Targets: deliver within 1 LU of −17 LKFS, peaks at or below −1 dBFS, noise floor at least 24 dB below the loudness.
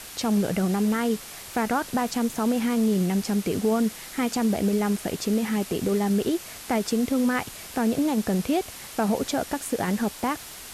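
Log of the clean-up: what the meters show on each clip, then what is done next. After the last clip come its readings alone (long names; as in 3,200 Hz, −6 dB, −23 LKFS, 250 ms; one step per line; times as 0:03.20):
background noise floor −41 dBFS; target noise floor −50 dBFS; integrated loudness −25.5 LKFS; sample peak −13.5 dBFS; target loudness −17.0 LKFS
→ noise reduction from a noise print 9 dB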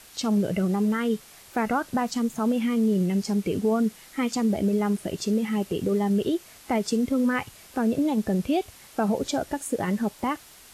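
background noise floor −50 dBFS; integrated loudness −26.0 LKFS; sample peak −14.0 dBFS; target loudness −17.0 LKFS
→ level +9 dB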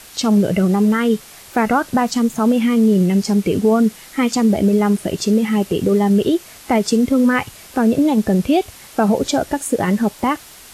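integrated loudness −17.0 LKFS; sample peak −5.0 dBFS; background noise floor −41 dBFS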